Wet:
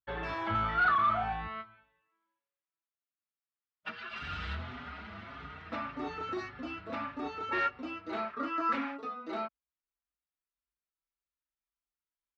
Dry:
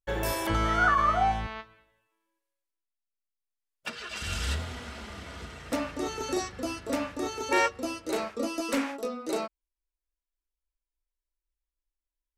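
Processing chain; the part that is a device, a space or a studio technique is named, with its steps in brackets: barber-pole flanger into a guitar amplifier (endless flanger 5.4 ms +1.7 Hz; soft clip -25 dBFS, distortion -13 dB; speaker cabinet 84–3500 Hz, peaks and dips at 350 Hz -4 dB, 510 Hz -9 dB, 1300 Hz +6 dB, 3100 Hz -3 dB); 8.33–8.73 band shelf 1400 Hz +10.5 dB 1.1 oct

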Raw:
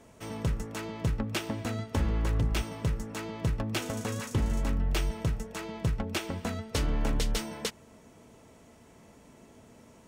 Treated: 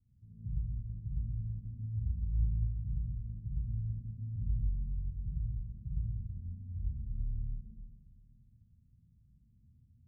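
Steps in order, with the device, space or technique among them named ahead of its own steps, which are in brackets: club heard from the street (limiter -24 dBFS, peak gain reduction 4.5 dB; LPF 130 Hz 24 dB/oct; reverb RT60 1.4 s, pre-delay 39 ms, DRR -4.5 dB); gain -7.5 dB

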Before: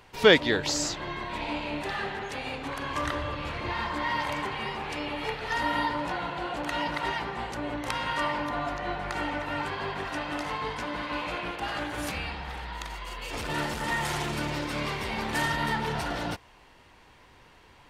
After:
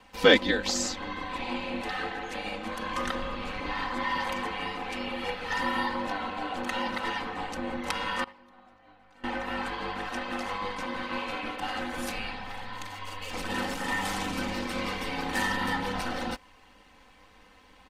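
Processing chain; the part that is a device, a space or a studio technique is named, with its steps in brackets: ring-modulated robot voice (ring modulator 50 Hz; comb 3.9 ms, depth 82%); 8.24–9.24 gate -26 dBFS, range -24 dB

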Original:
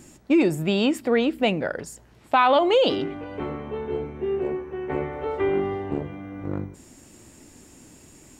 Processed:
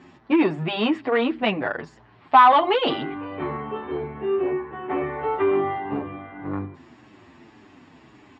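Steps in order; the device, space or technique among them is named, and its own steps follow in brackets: barber-pole flanger into a guitar amplifier (endless flanger 8 ms -1.8 Hz; soft clip -15.5 dBFS, distortion -17 dB; speaker cabinet 110–3800 Hz, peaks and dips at 190 Hz -5 dB, 520 Hz -6 dB, 790 Hz +4 dB, 1100 Hz +8 dB, 1800 Hz +4 dB); gain +5 dB

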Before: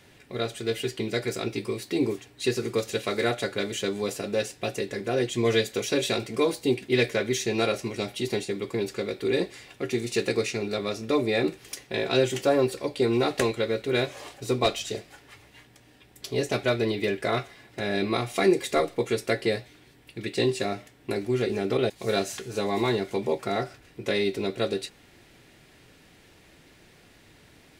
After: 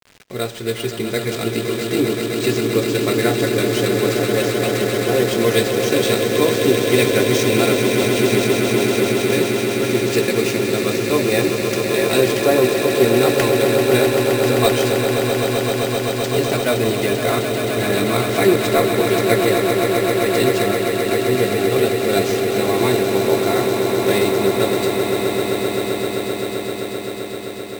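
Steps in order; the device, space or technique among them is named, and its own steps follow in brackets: early 8-bit sampler (sample-rate reducer 12000 Hz, jitter 0%; bit-crush 8-bit); swelling echo 0.13 s, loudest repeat 8, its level -8.5 dB; gain +5.5 dB

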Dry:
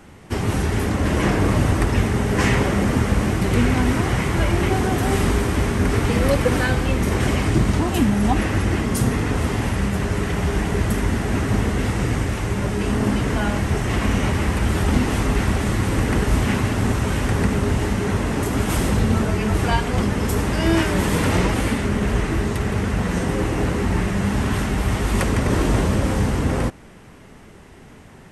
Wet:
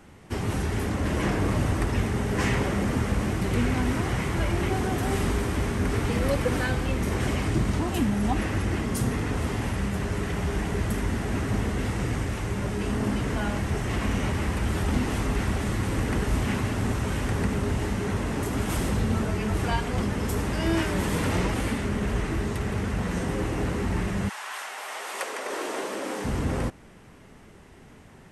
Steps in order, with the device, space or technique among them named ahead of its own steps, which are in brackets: 24.28–26.24 HPF 860 Hz -> 270 Hz 24 dB/oct; parallel distortion (in parallel at -13 dB: hard clip -21.5 dBFS, distortion -7 dB); on the sum: gain -7.5 dB

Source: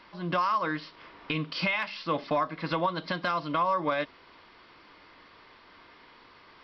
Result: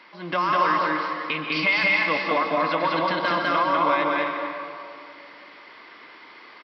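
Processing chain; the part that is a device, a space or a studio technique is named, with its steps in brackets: stadium PA (HPF 250 Hz 12 dB/oct; bell 2100 Hz +6 dB 0.47 oct; loudspeakers at several distances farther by 69 m -1 dB, 90 m -8 dB; reverb RT60 2.4 s, pre-delay 0.118 s, DRR 3.5 dB); gain +2.5 dB

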